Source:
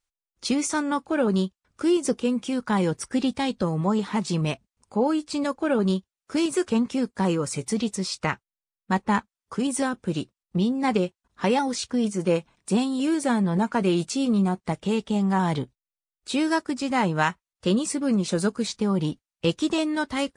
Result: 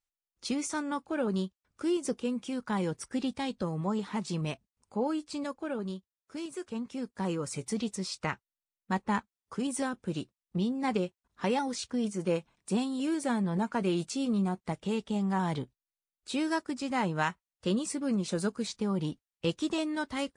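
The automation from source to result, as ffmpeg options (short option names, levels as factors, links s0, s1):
-af "afade=t=out:st=5.24:d=0.72:silence=0.446684,afade=t=in:st=6.69:d=0.88:silence=0.398107"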